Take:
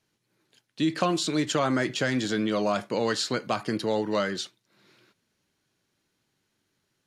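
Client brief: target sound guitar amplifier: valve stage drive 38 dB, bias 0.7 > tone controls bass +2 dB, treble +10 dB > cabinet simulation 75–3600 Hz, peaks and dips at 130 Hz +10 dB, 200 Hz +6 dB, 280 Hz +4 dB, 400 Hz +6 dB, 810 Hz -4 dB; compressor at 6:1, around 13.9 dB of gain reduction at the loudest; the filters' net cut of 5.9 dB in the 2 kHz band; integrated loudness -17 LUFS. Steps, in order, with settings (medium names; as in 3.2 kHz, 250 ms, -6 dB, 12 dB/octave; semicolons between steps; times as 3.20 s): peaking EQ 2 kHz -8.5 dB; compression 6:1, threshold -37 dBFS; valve stage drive 38 dB, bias 0.7; tone controls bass +2 dB, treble +10 dB; cabinet simulation 75–3600 Hz, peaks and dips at 130 Hz +10 dB, 200 Hz +6 dB, 280 Hz +4 dB, 400 Hz +6 dB, 810 Hz -4 dB; trim +23.5 dB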